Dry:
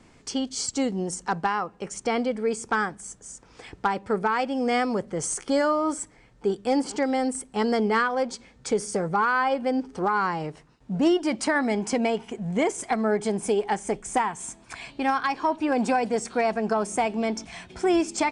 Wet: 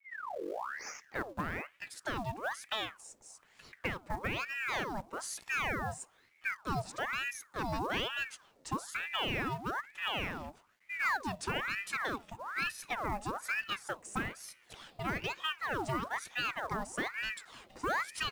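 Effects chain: tape start-up on the opening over 1.85 s; companded quantiser 6-bit; ring modulator with a swept carrier 1.3 kHz, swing 70%, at 1.1 Hz; trim -9 dB

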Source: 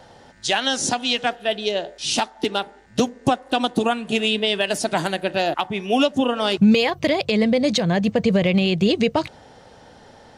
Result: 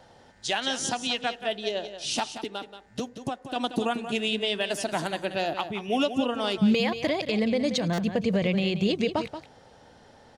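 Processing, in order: 2.35–3.56 s: compression 1.5:1, threshold -32 dBFS, peak gain reduction 7 dB; on a send: delay 180 ms -10.5 dB; on the sum: buffer glitch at 7.93 s, samples 256, times 8; trim -7 dB

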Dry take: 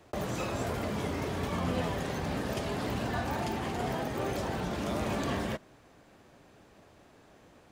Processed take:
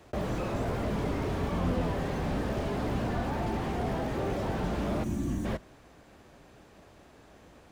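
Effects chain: octave divider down 2 oct, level -5 dB; time-frequency box 5.03–5.45 s, 370–5600 Hz -16 dB; slew-rate limiter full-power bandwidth 15 Hz; trim +2.5 dB

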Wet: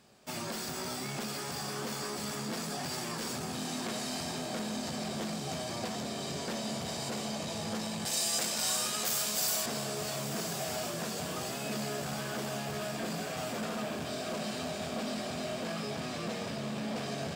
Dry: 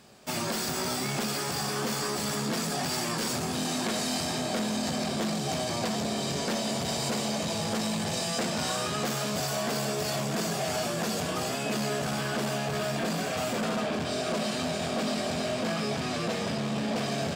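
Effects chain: 8.05–9.66 s: RIAA curve recording; echo that smears into a reverb 1165 ms, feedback 63%, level -11 dB; trim -7 dB

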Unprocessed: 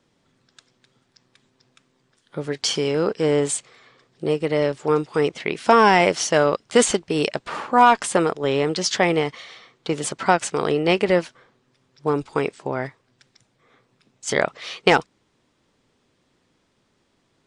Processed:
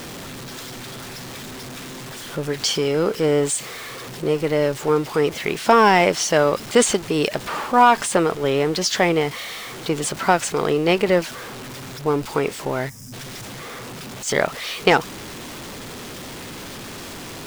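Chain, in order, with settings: jump at every zero crossing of -29 dBFS; time-frequency box 12.89–13.13 s, 260–4900 Hz -20 dB

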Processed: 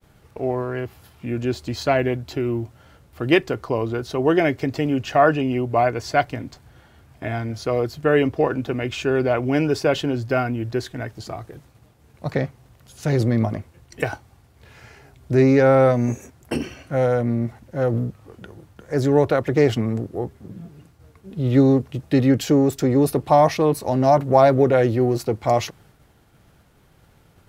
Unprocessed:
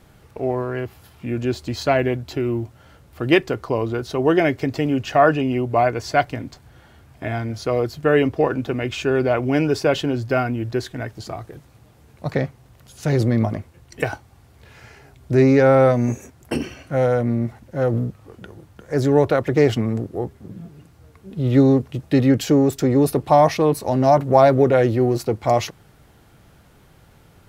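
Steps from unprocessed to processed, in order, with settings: expander -47 dBFS; trim -1 dB

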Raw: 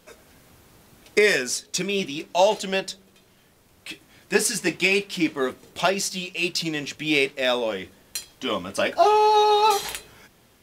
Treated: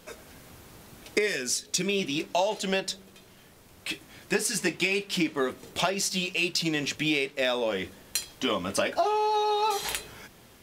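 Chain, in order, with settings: compression 6:1, threshold -27 dBFS, peak gain reduction 13.5 dB; 1.27–1.86 s: dynamic bell 920 Hz, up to -6 dB, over -50 dBFS, Q 0.71; trim +3.5 dB

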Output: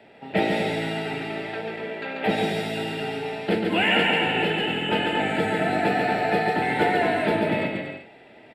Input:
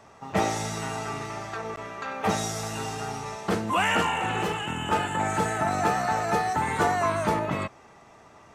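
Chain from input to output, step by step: vibrato 2.5 Hz 7.4 cents; three-band isolator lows -17 dB, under 180 Hz, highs -12 dB, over 5.1 kHz; static phaser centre 2.7 kHz, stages 4; bouncing-ball echo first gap 140 ms, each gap 0.7×, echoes 5; trim +6.5 dB

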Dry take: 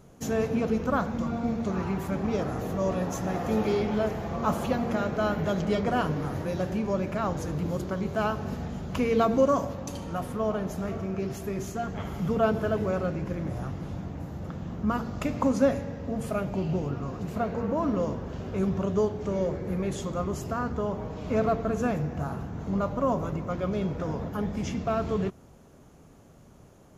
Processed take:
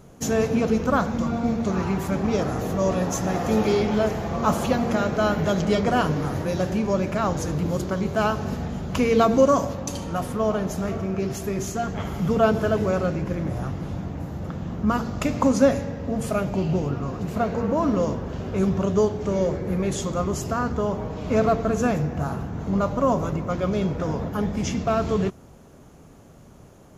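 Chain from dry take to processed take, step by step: dynamic bell 6.5 kHz, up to +5 dB, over -52 dBFS, Q 0.77; trim +5 dB

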